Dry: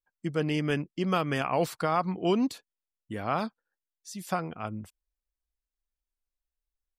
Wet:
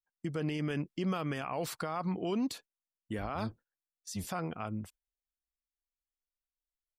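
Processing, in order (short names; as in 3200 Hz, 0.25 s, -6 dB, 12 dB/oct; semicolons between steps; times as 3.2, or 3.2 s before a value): 3.18–4.3 octaver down 1 oct, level -2 dB; limiter -25.5 dBFS, peak gain reduction 11 dB; gate -53 dBFS, range -12 dB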